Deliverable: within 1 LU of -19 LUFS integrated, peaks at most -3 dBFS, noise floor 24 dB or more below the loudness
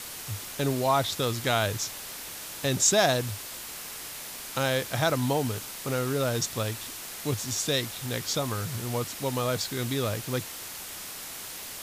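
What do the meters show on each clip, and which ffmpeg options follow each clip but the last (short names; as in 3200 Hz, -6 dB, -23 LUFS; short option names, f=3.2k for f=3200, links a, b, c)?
noise floor -40 dBFS; noise floor target -53 dBFS; loudness -29.0 LUFS; peak -9.0 dBFS; loudness target -19.0 LUFS
-> -af "afftdn=nr=13:nf=-40"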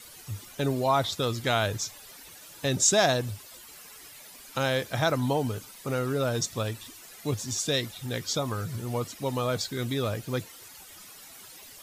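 noise floor -48 dBFS; noise floor target -53 dBFS
-> -af "afftdn=nr=6:nf=-48"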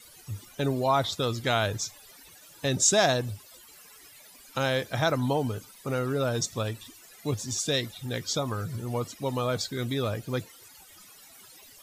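noise floor -52 dBFS; noise floor target -53 dBFS
-> -af "afftdn=nr=6:nf=-52"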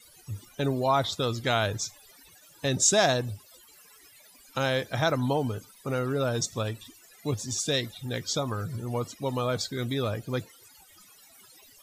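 noise floor -56 dBFS; loudness -28.5 LUFS; peak -9.0 dBFS; loudness target -19.0 LUFS
-> -af "volume=9.5dB,alimiter=limit=-3dB:level=0:latency=1"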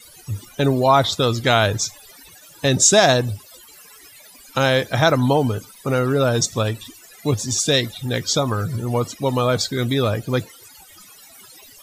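loudness -19.0 LUFS; peak -3.0 dBFS; noise floor -46 dBFS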